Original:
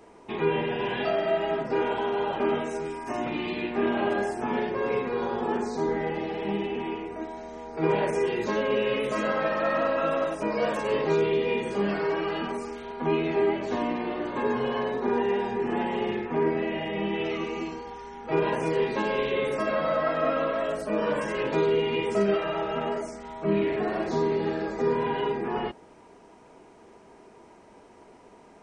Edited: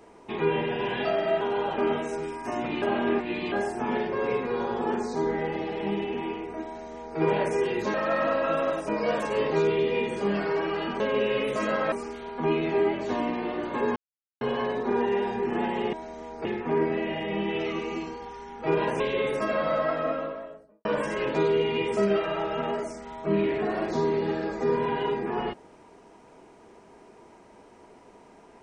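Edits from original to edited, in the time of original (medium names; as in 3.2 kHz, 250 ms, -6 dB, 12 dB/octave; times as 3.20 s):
1.41–2.03 s: delete
3.44–4.14 s: reverse
7.28–7.80 s: copy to 16.10 s
8.56–9.48 s: move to 12.54 s
14.58 s: insert silence 0.45 s
18.65–19.18 s: delete
19.90–21.03 s: studio fade out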